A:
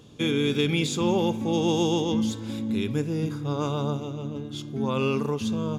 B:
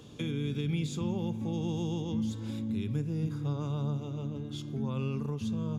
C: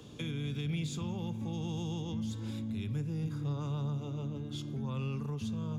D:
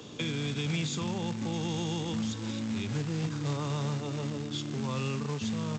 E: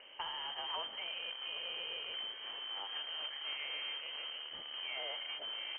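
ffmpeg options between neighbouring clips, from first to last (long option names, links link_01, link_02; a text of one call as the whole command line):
ffmpeg -i in.wav -filter_complex "[0:a]acrossover=split=180[link_01][link_02];[link_02]acompressor=threshold=-41dB:ratio=4[link_03];[link_01][link_03]amix=inputs=2:normalize=0" out.wav
ffmpeg -i in.wav -filter_complex "[0:a]acrossover=split=170|750[link_01][link_02][link_03];[link_02]alimiter=level_in=12dB:limit=-24dB:level=0:latency=1:release=214,volume=-12dB[link_04];[link_01][link_04][link_03]amix=inputs=3:normalize=0,asoftclip=type=tanh:threshold=-25.5dB" out.wav
ffmpeg -i in.wav -af "aresample=16000,acrusher=bits=4:mode=log:mix=0:aa=0.000001,aresample=44100,highpass=frequency=250:poles=1,volume=8dB" out.wav
ffmpeg -i in.wav -filter_complex "[0:a]lowpass=frequency=2800:width_type=q:width=0.5098,lowpass=frequency=2800:width_type=q:width=0.6013,lowpass=frequency=2800:width_type=q:width=0.9,lowpass=frequency=2800:width_type=q:width=2.563,afreqshift=-3300,acrossover=split=270 2500:gain=0.158 1 0.0631[link_01][link_02][link_03];[link_01][link_02][link_03]amix=inputs=3:normalize=0,volume=-1.5dB" out.wav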